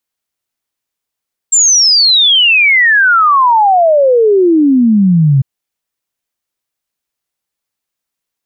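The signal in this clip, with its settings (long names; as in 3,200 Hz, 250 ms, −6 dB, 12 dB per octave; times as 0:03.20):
exponential sine sweep 7,500 Hz → 130 Hz 3.90 s −5 dBFS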